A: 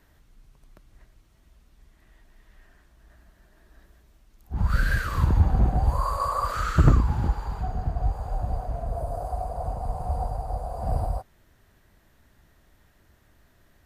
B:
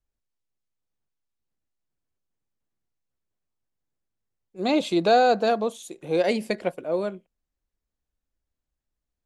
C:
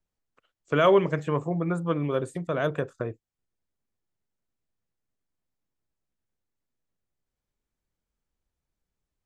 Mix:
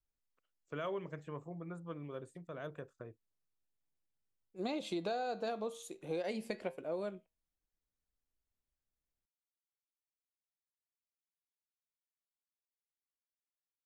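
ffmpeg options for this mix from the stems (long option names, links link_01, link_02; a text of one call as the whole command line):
ffmpeg -i stem1.wav -i stem2.wav -i stem3.wav -filter_complex "[1:a]flanger=delay=6.2:depth=4.8:regen=82:speed=0.27:shape=sinusoidal,volume=-4dB[link_01];[2:a]volume=-18dB[link_02];[link_01][link_02]amix=inputs=2:normalize=0,acompressor=threshold=-34dB:ratio=12" out.wav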